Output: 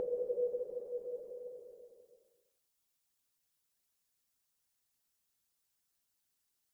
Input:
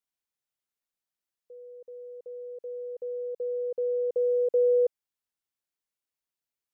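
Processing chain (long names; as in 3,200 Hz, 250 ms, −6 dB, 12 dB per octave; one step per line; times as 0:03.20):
bass and treble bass +5 dB, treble +7 dB
extreme stretch with random phases 16×, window 0.50 s, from 0:04.95
harmonic and percussive parts rebalanced harmonic −10 dB
level +7 dB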